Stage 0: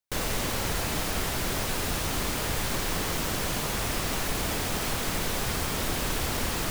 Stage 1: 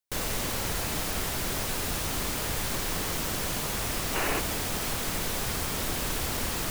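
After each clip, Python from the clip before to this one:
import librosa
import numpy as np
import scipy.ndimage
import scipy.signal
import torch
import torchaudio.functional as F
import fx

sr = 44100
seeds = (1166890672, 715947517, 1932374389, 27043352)

y = fx.high_shelf(x, sr, hz=6000.0, db=4.0)
y = fx.spec_box(y, sr, start_s=4.15, length_s=0.24, low_hz=260.0, high_hz=3000.0, gain_db=7)
y = F.gain(torch.from_numpy(y), -2.5).numpy()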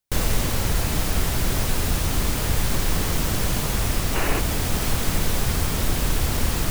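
y = fx.low_shelf(x, sr, hz=180.0, db=11.0)
y = fx.rider(y, sr, range_db=10, speed_s=0.5)
y = F.gain(torch.from_numpy(y), 3.5).numpy()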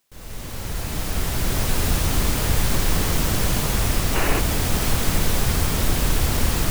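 y = fx.fade_in_head(x, sr, length_s=1.85)
y = fx.quant_dither(y, sr, seeds[0], bits=12, dither='triangular')
y = F.gain(torch.from_numpy(y), 2.0).numpy()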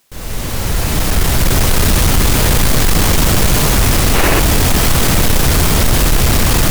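y = fx.fold_sine(x, sr, drive_db=9, ceiling_db=-6.5)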